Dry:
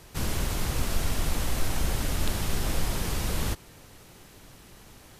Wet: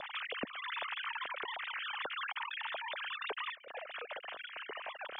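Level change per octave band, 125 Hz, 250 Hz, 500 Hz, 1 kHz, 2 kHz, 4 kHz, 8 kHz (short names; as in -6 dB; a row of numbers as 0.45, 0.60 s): under -35 dB, -19.5 dB, -8.5 dB, -2.0 dB, +0.5 dB, -4.5 dB, under -40 dB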